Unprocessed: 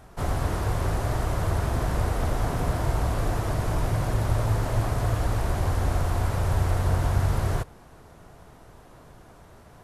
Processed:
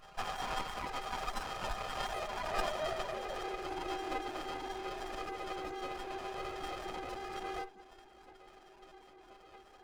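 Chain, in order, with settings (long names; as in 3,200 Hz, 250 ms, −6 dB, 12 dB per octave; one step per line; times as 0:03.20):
high-pass filter 89 Hz 6 dB per octave
stiff-string resonator 370 Hz, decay 0.25 s, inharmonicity 0.03
on a send at −19 dB: convolution reverb RT60 0.75 s, pre-delay 3 ms
on the sum: downward compressor 3 to 1, threshold −48 dBFS, peak gain reduction 6.5 dB
notch filter 7,400 Hz
gate on every frequency bin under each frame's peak −25 dB strong
high-pass filter sweep 1,400 Hz → 210 Hz, 0:01.79–0:04.76
formants moved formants −4 semitones
meter weighting curve ITU-R 468
windowed peak hold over 17 samples
level +14.5 dB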